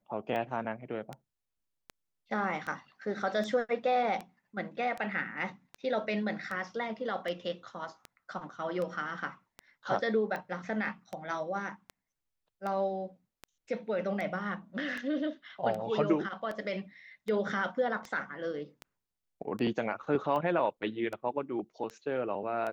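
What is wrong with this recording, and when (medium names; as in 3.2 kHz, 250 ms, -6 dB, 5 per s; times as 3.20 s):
tick 78 rpm -25 dBFS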